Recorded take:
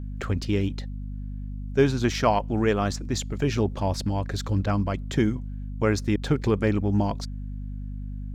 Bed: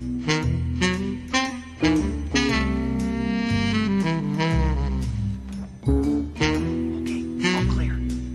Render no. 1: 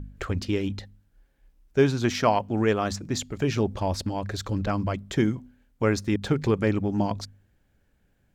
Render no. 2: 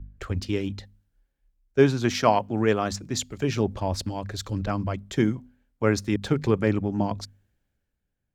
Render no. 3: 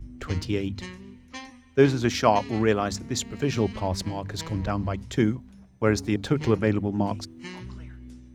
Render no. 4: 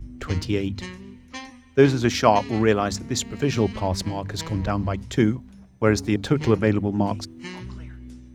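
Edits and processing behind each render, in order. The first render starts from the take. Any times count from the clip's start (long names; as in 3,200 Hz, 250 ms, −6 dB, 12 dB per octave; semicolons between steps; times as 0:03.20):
hum removal 50 Hz, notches 5
multiband upward and downward expander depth 40%
mix in bed −17.5 dB
level +3 dB; brickwall limiter −3 dBFS, peak gain reduction 1 dB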